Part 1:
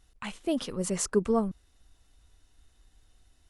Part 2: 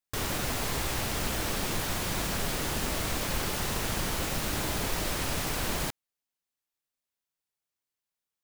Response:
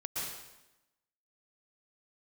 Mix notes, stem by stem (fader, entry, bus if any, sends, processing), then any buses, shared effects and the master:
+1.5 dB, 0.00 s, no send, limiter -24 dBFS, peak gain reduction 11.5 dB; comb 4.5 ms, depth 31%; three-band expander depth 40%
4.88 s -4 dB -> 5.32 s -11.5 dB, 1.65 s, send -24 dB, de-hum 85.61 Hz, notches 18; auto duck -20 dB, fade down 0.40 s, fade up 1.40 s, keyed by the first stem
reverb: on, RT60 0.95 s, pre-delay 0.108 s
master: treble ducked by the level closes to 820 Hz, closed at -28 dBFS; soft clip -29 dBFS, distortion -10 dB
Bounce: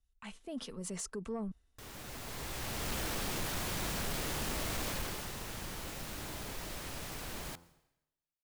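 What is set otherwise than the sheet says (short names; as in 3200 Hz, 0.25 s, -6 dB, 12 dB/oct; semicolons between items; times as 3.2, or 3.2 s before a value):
stem 1 +1.5 dB -> -9.0 dB; master: missing treble ducked by the level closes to 820 Hz, closed at -28 dBFS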